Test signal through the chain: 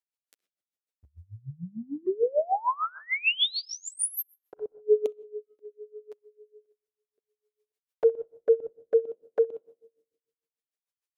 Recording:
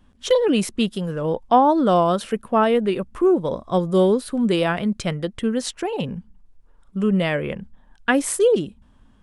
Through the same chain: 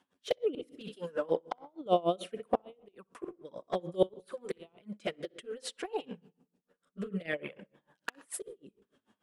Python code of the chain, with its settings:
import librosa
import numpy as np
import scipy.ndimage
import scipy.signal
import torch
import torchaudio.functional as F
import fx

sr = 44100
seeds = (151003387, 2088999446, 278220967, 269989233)

p1 = scipy.signal.sosfilt(scipy.signal.butter(2, 360.0, 'highpass', fs=sr, output='sos'), x)
p2 = fx.dynamic_eq(p1, sr, hz=6500.0, q=1.5, threshold_db=-43.0, ratio=4.0, max_db=-7)
p3 = fx.level_steps(p2, sr, step_db=23)
p4 = p2 + (p3 * 10.0 ** (0.0 / 20.0))
p5 = fx.env_flanger(p4, sr, rest_ms=11.1, full_db=-15.0)
p6 = fx.rotary(p5, sr, hz=0.6)
p7 = fx.gate_flip(p6, sr, shuts_db=-12.0, range_db=-29)
p8 = p7 + fx.echo_tape(p7, sr, ms=63, feedback_pct=23, wet_db=-16.5, lp_hz=3300.0, drive_db=5.0, wow_cents=5, dry=0)
p9 = fx.room_shoebox(p8, sr, seeds[0], volume_m3=3400.0, walls='furnished', distance_m=0.4)
y = p9 * 10.0 ** (-24 * (0.5 - 0.5 * np.cos(2.0 * np.pi * 6.7 * np.arange(len(p9)) / sr)) / 20.0)